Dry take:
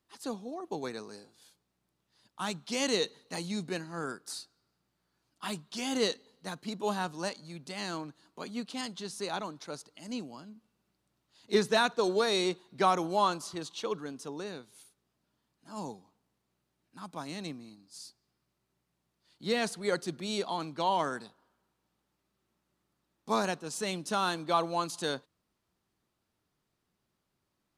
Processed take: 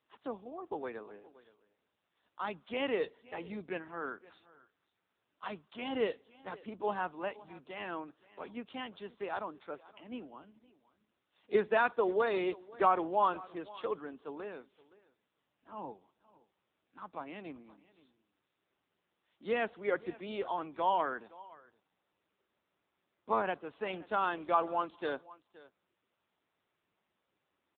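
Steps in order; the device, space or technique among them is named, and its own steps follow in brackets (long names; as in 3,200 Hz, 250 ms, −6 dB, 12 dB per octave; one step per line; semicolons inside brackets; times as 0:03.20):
satellite phone (band-pass filter 310–3,100 Hz; single-tap delay 520 ms −20.5 dB; AMR narrowband 6.7 kbit/s 8,000 Hz)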